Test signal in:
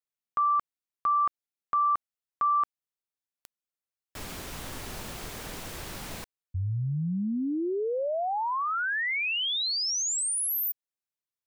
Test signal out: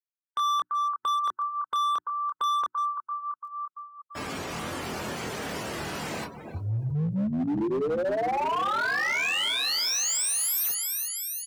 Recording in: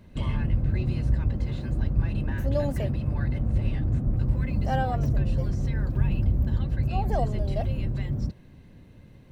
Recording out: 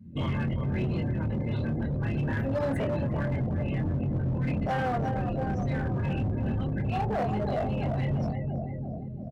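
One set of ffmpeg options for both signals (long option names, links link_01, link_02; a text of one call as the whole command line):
ffmpeg -i in.wav -af "aecho=1:1:339|678|1017|1356|1695|2034|2373:0.355|0.213|0.128|0.0766|0.046|0.0276|0.0166,alimiter=limit=-18.5dB:level=0:latency=1:release=34,acontrast=49,bandreject=frequency=60:width_type=h:width=6,bandreject=frequency=120:width_type=h:width=6,bandreject=frequency=180:width_type=h:width=6,bandreject=frequency=240:width_type=h:width=6,bandreject=frequency=300:width_type=h:width=6,bandreject=frequency=360:width_type=h:width=6,flanger=delay=22.5:depth=4.3:speed=0.24,afftdn=noise_reduction=31:noise_floor=-43,highpass=130,equalizer=frequency=3700:width=4.7:gain=-3.5,acompressor=threshold=-42dB:ratio=1.5:attack=1.3:release=43:knee=1:detection=peak,volume=32dB,asoftclip=hard,volume=-32dB,volume=8dB" out.wav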